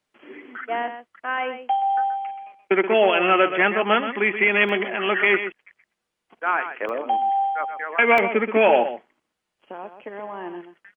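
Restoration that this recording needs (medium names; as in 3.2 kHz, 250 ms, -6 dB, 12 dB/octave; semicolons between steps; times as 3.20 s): interpolate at 4.69/6.89/8.18 s, 1.3 ms; inverse comb 127 ms -10 dB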